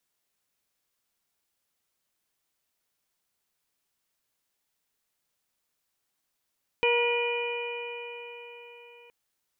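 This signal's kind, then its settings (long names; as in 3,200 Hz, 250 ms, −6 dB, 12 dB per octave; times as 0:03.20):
stiff-string partials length 2.27 s, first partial 475 Hz, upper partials −6/−18.5/−16/−1/−9 dB, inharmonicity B 0.0021, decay 4.40 s, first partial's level −23 dB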